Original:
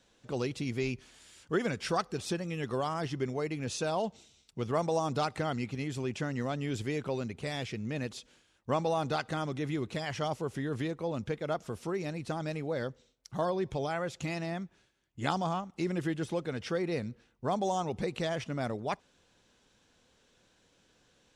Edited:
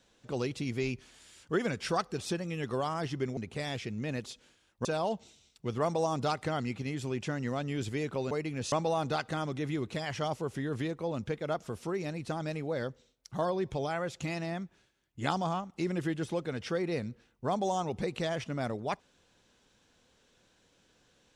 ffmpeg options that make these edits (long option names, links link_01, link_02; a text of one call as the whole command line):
ffmpeg -i in.wav -filter_complex "[0:a]asplit=5[link_01][link_02][link_03][link_04][link_05];[link_01]atrim=end=3.372[link_06];[link_02]atrim=start=7.238:end=8.722[link_07];[link_03]atrim=start=3.778:end=7.242[link_08];[link_04]atrim=start=3.368:end=3.782[link_09];[link_05]atrim=start=8.718[link_10];[link_06][link_07]acrossfade=duration=0.004:curve1=hsin:curve2=hsin[link_11];[link_11][link_08]acrossfade=duration=0.004:curve1=hsin:curve2=hsin[link_12];[link_12][link_09]acrossfade=duration=0.004:curve1=hsin:curve2=hsin[link_13];[link_13][link_10]acrossfade=duration=0.004:curve1=hsin:curve2=hsin" out.wav